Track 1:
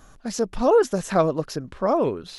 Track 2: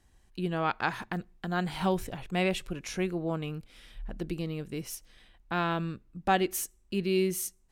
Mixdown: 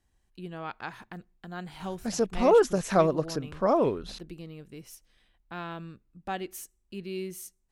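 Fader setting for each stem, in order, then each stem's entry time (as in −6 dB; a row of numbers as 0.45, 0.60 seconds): −2.5, −8.5 decibels; 1.80, 0.00 seconds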